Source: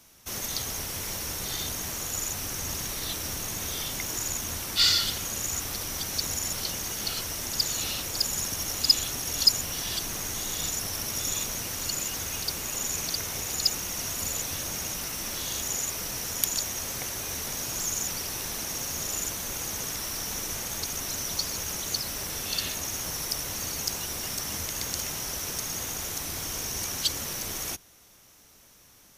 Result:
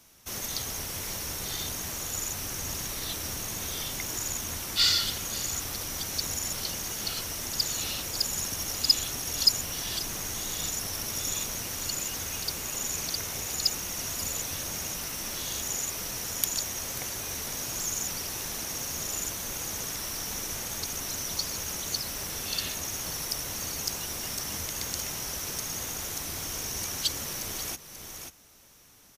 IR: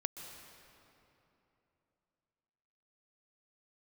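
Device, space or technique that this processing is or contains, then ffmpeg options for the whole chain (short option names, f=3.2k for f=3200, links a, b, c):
ducked delay: -filter_complex "[0:a]asplit=3[a][b][c];[b]adelay=537,volume=-7dB[d];[c]apad=whole_len=1310180[e];[d][e]sidechaincompress=threshold=-39dB:ratio=8:attack=34:release=445[f];[a][f]amix=inputs=2:normalize=0,volume=-1.5dB"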